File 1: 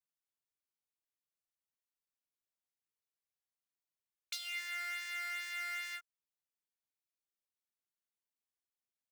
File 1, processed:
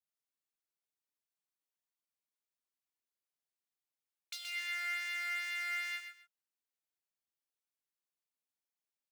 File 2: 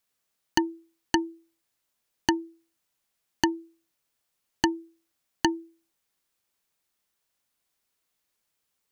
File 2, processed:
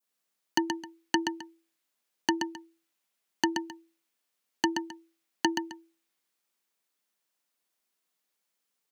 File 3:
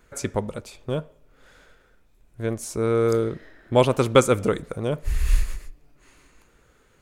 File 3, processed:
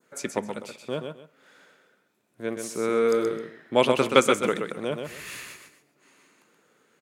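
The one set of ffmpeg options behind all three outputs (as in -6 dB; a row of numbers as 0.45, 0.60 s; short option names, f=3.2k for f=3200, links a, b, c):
-filter_complex "[0:a]highpass=f=170:w=0.5412,highpass=f=170:w=1.3066,adynamicequalizer=threshold=0.00708:dfrequency=2400:dqfactor=0.85:tfrequency=2400:tqfactor=0.85:attack=5:release=100:ratio=0.375:range=3.5:mode=boostabove:tftype=bell,asplit=2[a][b];[b]aecho=0:1:126|263:0.501|0.119[c];[a][c]amix=inputs=2:normalize=0,volume=-3.5dB"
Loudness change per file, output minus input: +2.5, -2.5, -2.0 LU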